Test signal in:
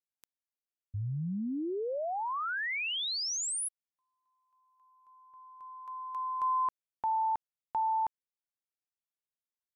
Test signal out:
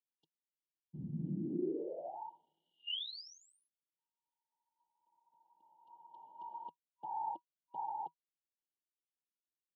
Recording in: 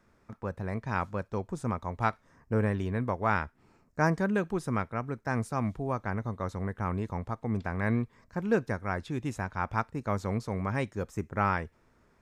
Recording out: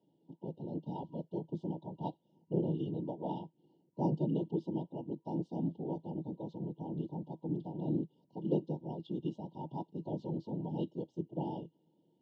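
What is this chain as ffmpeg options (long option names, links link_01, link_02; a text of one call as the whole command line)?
ffmpeg -i in.wav -af "afftfilt=real='hypot(re,im)*cos(2*PI*random(0))':imag='hypot(re,im)*sin(2*PI*random(1))':win_size=512:overlap=0.75,highpass=frequency=140:width=0.5412,highpass=frequency=140:width=1.3066,equalizer=frequency=160:width_type=q:width=4:gain=9,equalizer=frequency=330:width_type=q:width=4:gain=10,equalizer=frequency=710:width_type=q:width=4:gain=-4,equalizer=frequency=2800:width_type=q:width=4:gain=6,lowpass=frequency=3800:width=0.5412,lowpass=frequency=3800:width=1.3066,afftfilt=real='re*(1-between(b*sr/4096,960,2800))':imag='im*(1-between(b*sr/4096,960,2800))':win_size=4096:overlap=0.75,volume=-2.5dB" out.wav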